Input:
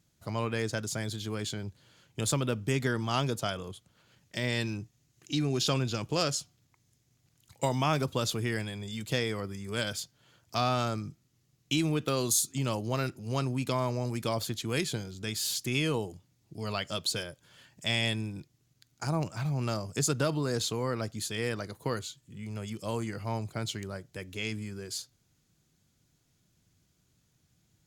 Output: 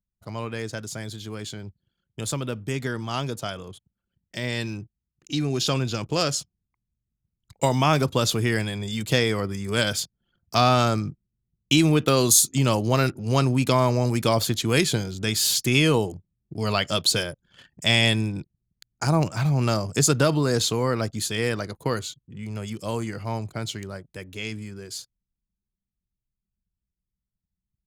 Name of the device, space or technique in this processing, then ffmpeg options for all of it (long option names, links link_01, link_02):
voice memo with heavy noise removal: -af "anlmdn=0.000631,dynaudnorm=framelen=660:gausssize=21:maxgain=10.5dB"